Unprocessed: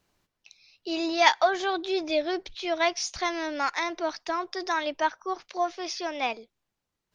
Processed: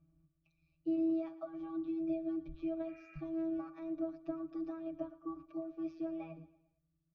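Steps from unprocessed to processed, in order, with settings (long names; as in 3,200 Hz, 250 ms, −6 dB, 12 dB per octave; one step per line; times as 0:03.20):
healed spectral selection 0:02.90–0:03.18, 1,300–2,800 Hz before
downward compressor 10 to 1, threshold −31 dBFS, peak gain reduction 18 dB
spectral tilt −4 dB per octave
phases set to zero 163 Hz
high-shelf EQ 6,300 Hz +6.5 dB
resonances in every octave D, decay 0.22 s
repeating echo 114 ms, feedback 45%, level −17 dB
level +9.5 dB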